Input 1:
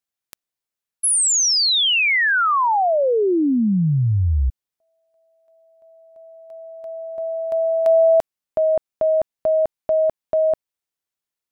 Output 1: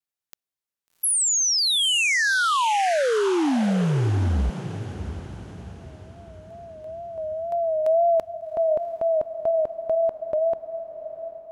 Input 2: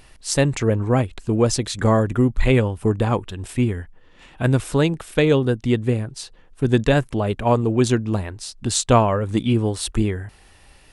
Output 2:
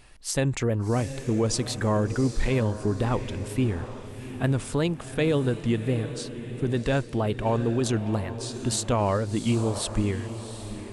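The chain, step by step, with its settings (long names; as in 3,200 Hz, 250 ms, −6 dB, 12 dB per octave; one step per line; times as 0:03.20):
brickwall limiter −11.5 dBFS
tape wow and flutter 84 cents
on a send: feedback delay with all-pass diffusion 741 ms, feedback 43%, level −11 dB
on the sum: level −4 dB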